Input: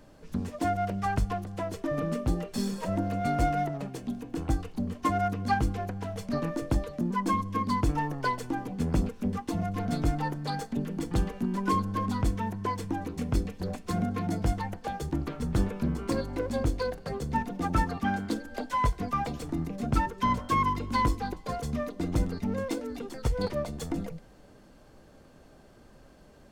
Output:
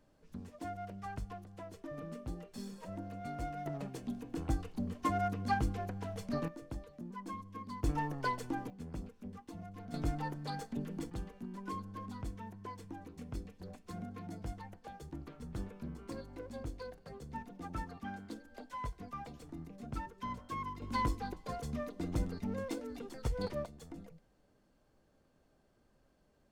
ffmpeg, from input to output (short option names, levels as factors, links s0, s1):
-af "asetnsamples=n=441:p=0,asendcmd='3.66 volume volume -6dB;6.48 volume volume -16.5dB;7.84 volume volume -6dB;8.7 volume volume -17dB;9.94 volume volume -8dB;11.1 volume volume -15dB;20.82 volume volume -7.5dB;23.66 volume volume -16.5dB',volume=0.188"